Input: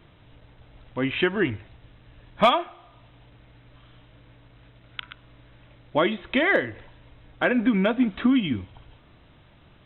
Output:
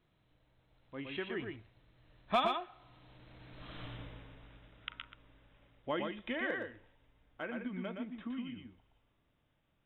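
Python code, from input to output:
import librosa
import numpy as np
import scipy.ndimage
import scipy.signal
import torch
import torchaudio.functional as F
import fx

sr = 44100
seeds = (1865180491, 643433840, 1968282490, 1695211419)

p1 = fx.doppler_pass(x, sr, speed_mps=13, closest_m=2.3, pass_at_s=3.83)
p2 = fx.peak_eq(p1, sr, hz=83.0, db=-4.0, octaves=0.93)
p3 = p2 + fx.echo_single(p2, sr, ms=118, db=-4.5, dry=0)
y = F.gain(torch.from_numpy(p3), 6.5).numpy()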